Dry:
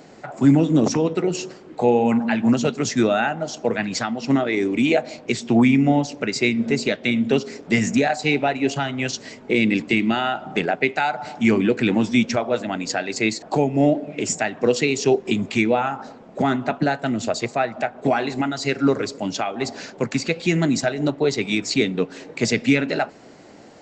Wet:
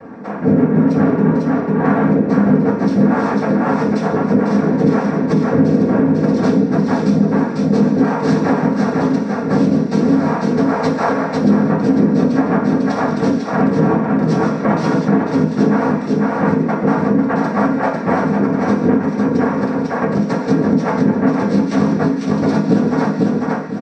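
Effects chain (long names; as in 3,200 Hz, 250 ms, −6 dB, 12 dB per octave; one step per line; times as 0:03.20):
adaptive Wiener filter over 15 samples
in parallel at −7 dB: wave folding −18.5 dBFS
on the sum: cochlear-implant simulation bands 3
Bessel low-pass filter 2,900 Hz, order 2
comb filter 4.3 ms, depth 45%
repeating echo 498 ms, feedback 17%, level −4.5 dB
reversed playback
upward compression, threshold −31 dBFS
reversed playback
convolution reverb RT60 0.40 s, pre-delay 3 ms, DRR −8 dB
downward compressor 2.5 to 1, threshold −5 dBFS, peak gain reduction 11.5 dB
level that may rise only so fast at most 220 dB per second
level −9 dB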